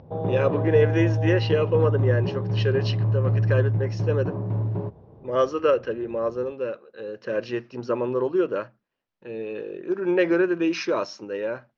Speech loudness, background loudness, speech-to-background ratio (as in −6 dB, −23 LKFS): −25.5 LKFS, −25.0 LKFS, −0.5 dB